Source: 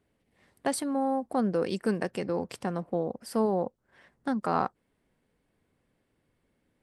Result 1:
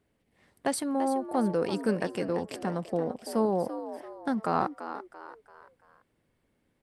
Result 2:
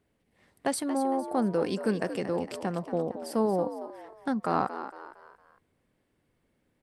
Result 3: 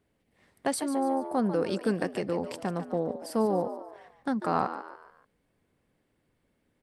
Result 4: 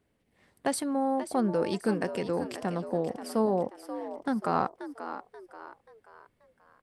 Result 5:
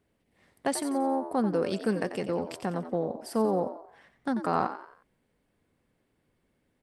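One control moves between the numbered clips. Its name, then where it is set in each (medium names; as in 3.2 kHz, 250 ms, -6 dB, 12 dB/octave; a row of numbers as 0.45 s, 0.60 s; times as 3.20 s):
frequency-shifting echo, time: 338 ms, 229 ms, 145 ms, 533 ms, 90 ms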